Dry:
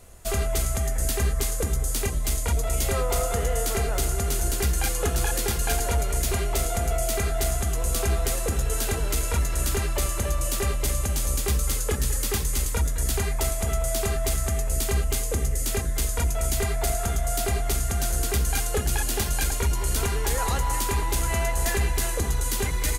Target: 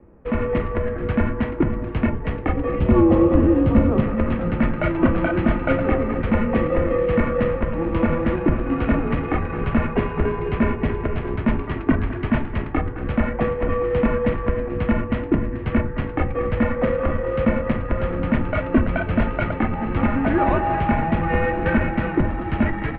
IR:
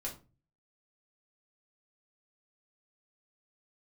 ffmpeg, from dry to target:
-filter_complex "[0:a]adynamicsmooth=sensitivity=7:basefreq=1100,lowshelf=frequency=470:gain=11,dynaudnorm=framelen=250:gausssize=3:maxgain=8dB,asettb=1/sr,asplit=3[link_01][link_02][link_03];[link_01]atrim=end=2.794[link_04];[link_02]atrim=start=2.79:end=4,asetpts=PTS-STARTPTS,afade=type=in:duration=0.004:curve=qsin,afade=type=out:start_time=1.206:duration=0.004:curve=qsin,equalizer=frequency=125:width_type=o:width=1:gain=-11,equalizer=frequency=250:width_type=o:width=1:gain=10,equalizer=frequency=2000:width_type=o:width=1:gain=-8[link_05];[link_03]atrim=start=3.996[link_06];[link_04][link_05]acrossfade=duration=0.004:curve1=hsin:curve2=qsin[link_07];[link_07][link_06]acrossfade=duration=0.004:curve1=qsin:curve2=hsin,asplit=2[link_08][link_09];[1:a]atrim=start_sample=2205,lowpass=4700[link_10];[link_09][link_10]afir=irnorm=-1:irlink=0,volume=-7dB[link_11];[link_08][link_11]amix=inputs=2:normalize=0,highpass=frequency=160:width_type=q:width=0.5412,highpass=frequency=160:width_type=q:width=1.307,lowpass=frequency=2700:width_type=q:width=0.5176,lowpass=frequency=2700:width_type=q:width=0.7071,lowpass=frequency=2700:width_type=q:width=1.932,afreqshift=-170"

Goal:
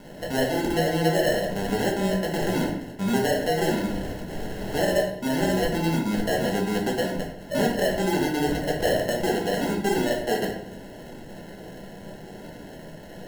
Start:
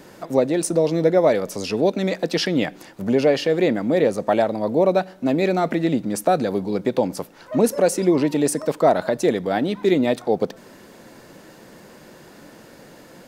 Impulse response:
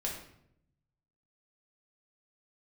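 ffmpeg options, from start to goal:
-filter_complex "[0:a]acompressor=threshold=-28dB:ratio=2.5,acrusher=samples=37:mix=1:aa=0.000001,asettb=1/sr,asplit=3[link_01][link_02][link_03];[link_01]atrim=end=3.864[link_04];[link_02]atrim=start=3.86:end=4.74,asetpts=PTS-STARTPTS,afade=type=in:duration=0.004:curve=qsin,afade=type=out:start_time=0.876:duration=0.004:curve=qsin,aeval=exprs='(mod(35.5*val(0)+1,2)-1)/35.5':channel_layout=same[link_05];[link_03]atrim=start=4.736[link_06];[link_04][link_05]acrossfade=duration=0.004:curve1=hsin:curve2=qsin[link_07];[link_07][link_06]acrossfade=duration=0.004:curve1=qsin:curve2=hsin[link_08];[1:a]atrim=start_sample=2205[link_09];[link_08][link_09]afir=irnorm=-1:irlink=0"

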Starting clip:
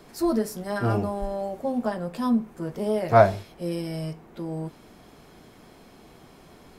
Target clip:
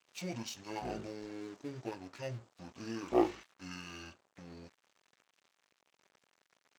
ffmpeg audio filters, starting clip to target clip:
ffmpeg -i in.wav -af "asetrate=23361,aresample=44100,atempo=1.88775,aeval=exprs='sgn(val(0))*max(abs(val(0))-0.00473,0)':channel_layout=same,highpass=frequency=1300:poles=1,volume=-1dB" out.wav

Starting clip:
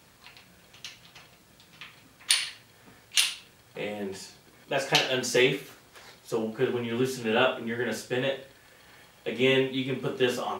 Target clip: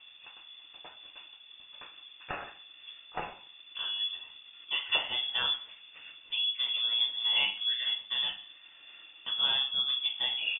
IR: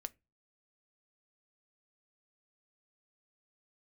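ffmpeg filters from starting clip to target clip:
-filter_complex "[0:a]firequalizer=gain_entry='entry(240,0);entry(390,-27);entry(870,2);entry(1200,-15)':delay=0.05:min_phase=1,lowpass=frequency=3100:width_type=q:width=0.5098,lowpass=frequency=3100:width_type=q:width=0.6013,lowpass=frequency=3100:width_type=q:width=0.9,lowpass=frequency=3100:width_type=q:width=2.563,afreqshift=-3600,asplit=2[link_01][link_02];[link_02]acompressor=threshold=-44dB:ratio=6,volume=3dB[link_03];[link_01][link_03]amix=inputs=2:normalize=0,volume=1.5dB"

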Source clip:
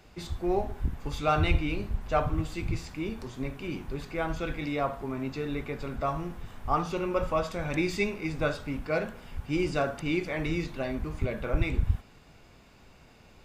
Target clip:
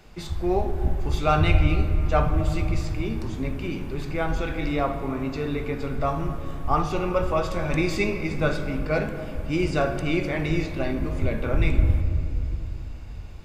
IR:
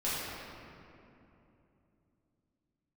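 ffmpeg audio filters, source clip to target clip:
-filter_complex "[0:a]asplit=2[link_01][link_02];[1:a]atrim=start_sample=2205,lowshelf=frequency=160:gain=9.5[link_03];[link_02][link_03]afir=irnorm=-1:irlink=0,volume=-15dB[link_04];[link_01][link_04]amix=inputs=2:normalize=0,volume=2.5dB"

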